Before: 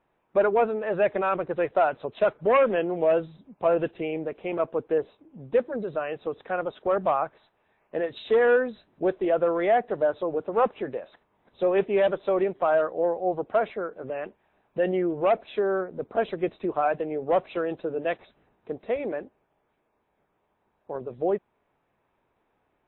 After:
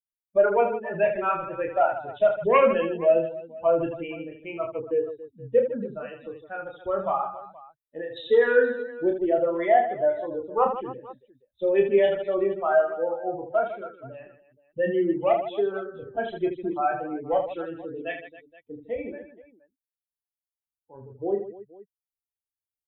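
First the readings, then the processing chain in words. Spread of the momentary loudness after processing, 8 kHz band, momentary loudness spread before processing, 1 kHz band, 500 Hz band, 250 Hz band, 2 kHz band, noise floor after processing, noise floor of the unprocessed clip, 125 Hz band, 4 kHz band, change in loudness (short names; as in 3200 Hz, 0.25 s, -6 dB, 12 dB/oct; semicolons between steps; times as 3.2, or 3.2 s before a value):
17 LU, n/a, 12 LU, +1.0 dB, +0.5 dB, 0.0 dB, +0.5 dB, under -85 dBFS, -73 dBFS, -2.0 dB, 0.0 dB, +1.0 dB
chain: per-bin expansion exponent 2; reverse bouncing-ball echo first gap 30 ms, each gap 1.6×, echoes 5; gain +3.5 dB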